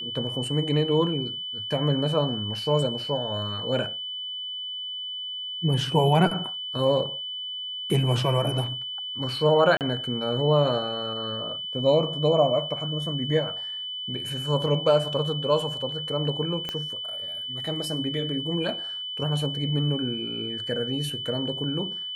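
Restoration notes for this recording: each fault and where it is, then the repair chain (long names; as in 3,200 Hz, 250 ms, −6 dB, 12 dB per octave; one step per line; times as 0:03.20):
whistle 3,000 Hz −31 dBFS
0:09.77–0:09.81: drop-out 38 ms
0:16.69: click −16 dBFS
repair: click removal
notch filter 3,000 Hz, Q 30
repair the gap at 0:09.77, 38 ms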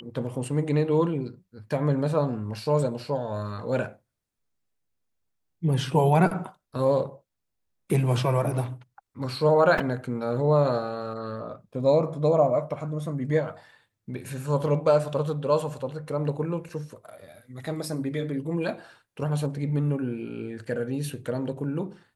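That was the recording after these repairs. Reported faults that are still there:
0:16.69: click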